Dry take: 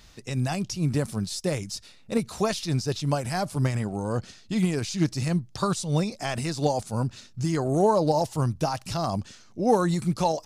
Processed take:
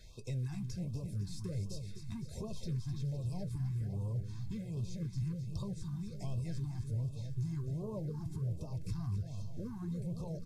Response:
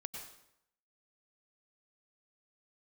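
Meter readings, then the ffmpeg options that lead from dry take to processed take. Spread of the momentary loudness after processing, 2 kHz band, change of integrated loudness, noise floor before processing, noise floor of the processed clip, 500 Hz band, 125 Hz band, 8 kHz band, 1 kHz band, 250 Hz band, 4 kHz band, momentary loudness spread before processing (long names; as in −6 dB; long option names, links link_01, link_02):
5 LU, below −20 dB, −13.0 dB, −52 dBFS, −46 dBFS, −22.5 dB, −8.0 dB, −20.0 dB, −29.5 dB, −14.5 dB, −20.5 dB, 8 LU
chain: -filter_complex "[0:a]asuperstop=centerf=2900:order=8:qfactor=6.8,acrossover=split=400[link_01][link_02];[link_02]acompressor=threshold=-42dB:ratio=3[link_03];[link_01][link_03]amix=inputs=2:normalize=0,asubboost=boost=3.5:cutoff=150,acompressor=threshold=-29dB:ratio=10,aecho=1:1:255|510|765|1020|1275|1530|1785:0.355|0.206|0.119|0.0692|0.0402|0.0233|0.0135,acrusher=bits=7:mode=log:mix=0:aa=0.000001,asoftclip=type=tanh:threshold=-28dB,lowshelf=frequency=430:gain=5.5,aecho=1:1:1.9:0.51,flanger=delay=7.8:depth=2.4:regen=-62:speed=0.4:shape=sinusoidal,aresample=32000,aresample=44100,afftfilt=real='re*(1-between(b*sr/1024,480*pow(1800/480,0.5+0.5*sin(2*PI*1.3*pts/sr))/1.41,480*pow(1800/480,0.5+0.5*sin(2*PI*1.3*pts/sr))*1.41))':imag='im*(1-between(b*sr/1024,480*pow(1800/480,0.5+0.5*sin(2*PI*1.3*pts/sr))/1.41,480*pow(1800/480,0.5+0.5*sin(2*PI*1.3*pts/sr))*1.41))':win_size=1024:overlap=0.75,volume=-4.5dB"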